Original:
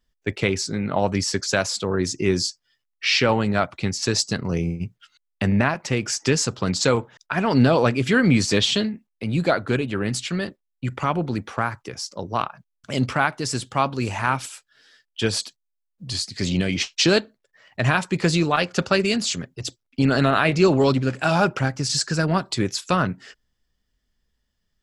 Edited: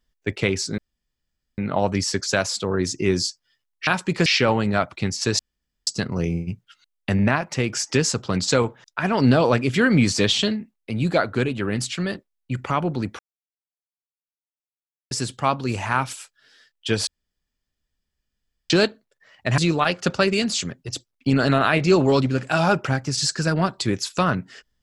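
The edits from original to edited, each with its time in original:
0.78 s: insert room tone 0.80 s
4.20 s: insert room tone 0.48 s
11.52–13.44 s: mute
15.40–17.03 s: room tone
17.91–18.30 s: move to 3.07 s

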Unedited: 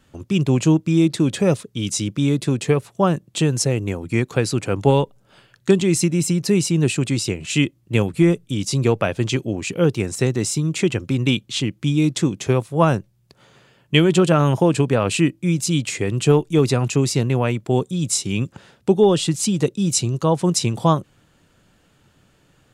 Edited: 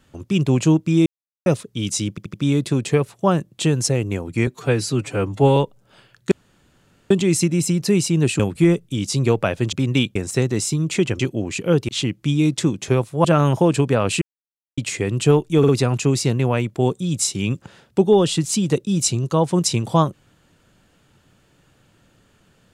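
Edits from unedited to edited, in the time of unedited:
1.06–1.46 s: mute
2.10 s: stutter 0.08 s, 4 plays
4.23–4.96 s: stretch 1.5×
5.71 s: insert room tone 0.79 s
7.00–7.98 s: delete
9.31–10.00 s: swap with 11.04–11.47 s
12.83–14.25 s: delete
15.22–15.78 s: mute
16.59 s: stutter 0.05 s, 3 plays

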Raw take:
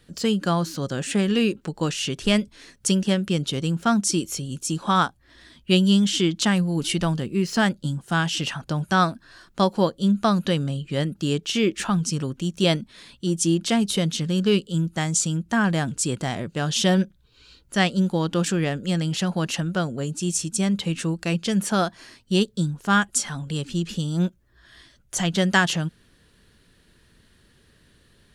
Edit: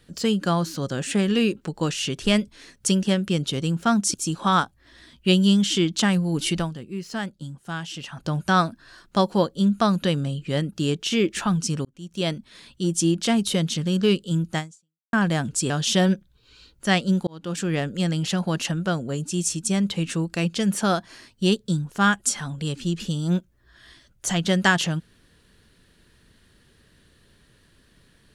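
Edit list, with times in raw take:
4.14–4.57 s: delete
7.00–8.66 s: dip -9 dB, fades 0.13 s
12.28–13.37 s: fade in equal-power
15.01–15.56 s: fade out exponential
16.13–16.59 s: delete
18.16–18.68 s: fade in

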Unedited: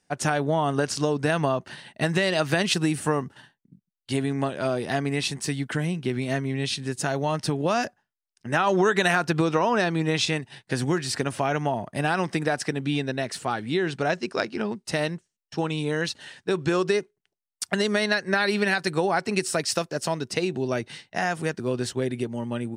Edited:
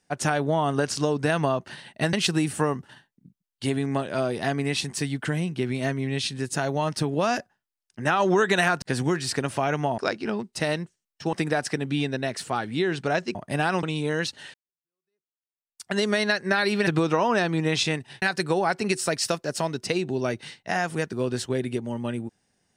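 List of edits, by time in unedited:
2.13–2.60 s: delete
9.29–10.64 s: move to 18.69 s
11.80–12.28 s: swap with 14.30–15.65 s
16.36–17.79 s: fade in exponential

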